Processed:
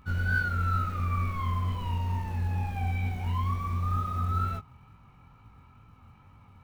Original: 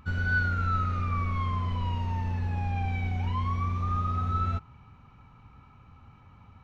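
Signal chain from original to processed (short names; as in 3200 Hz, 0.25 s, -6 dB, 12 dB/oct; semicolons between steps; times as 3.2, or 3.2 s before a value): short-mantissa float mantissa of 4-bit; chorus 2.2 Hz, delay 18 ms, depth 5.9 ms; gain +1.5 dB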